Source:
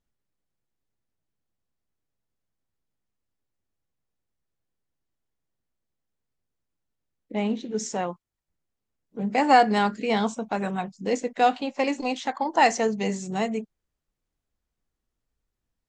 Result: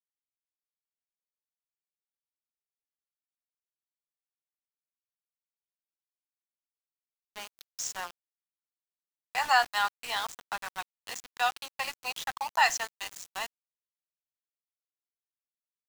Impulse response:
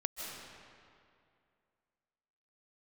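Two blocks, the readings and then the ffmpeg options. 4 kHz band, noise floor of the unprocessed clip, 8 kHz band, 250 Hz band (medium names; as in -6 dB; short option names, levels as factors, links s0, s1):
+0.5 dB, -84 dBFS, 0.0 dB, -33.0 dB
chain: -af "highpass=f=990:w=0.5412,highpass=f=990:w=1.3066,bandreject=f=2200:w=5.2,aeval=exprs='val(0)*gte(abs(val(0)),0.0168)':c=same,volume=1.12"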